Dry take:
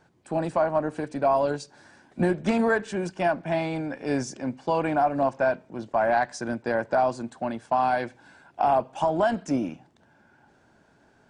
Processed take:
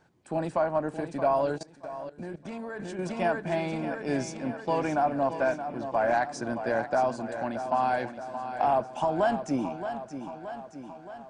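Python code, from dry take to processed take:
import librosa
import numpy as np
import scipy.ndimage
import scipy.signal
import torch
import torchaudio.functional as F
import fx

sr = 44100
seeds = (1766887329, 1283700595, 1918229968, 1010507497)

y = fx.echo_feedback(x, sr, ms=623, feedback_pct=59, wet_db=-10)
y = fx.level_steps(y, sr, step_db=17, at=(1.58, 2.99))
y = y * librosa.db_to_amplitude(-3.0)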